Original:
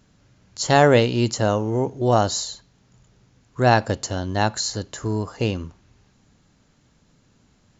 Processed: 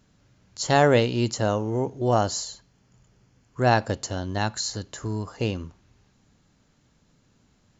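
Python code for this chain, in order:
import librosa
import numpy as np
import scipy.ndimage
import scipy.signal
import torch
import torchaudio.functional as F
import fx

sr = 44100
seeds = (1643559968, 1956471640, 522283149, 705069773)

y = fx.notch(x, sr, hz=3800.0, q=7.7, at=(2.03, 3.67))
y = fx.dynamic_eq(y, sr, hz=530.0, q=0.9, threshold_db=-33.0, ratio=4.0, max_db=-5, at=(4.37, 5.27))
y = y * librosa.db_to_amplitude(-3.5)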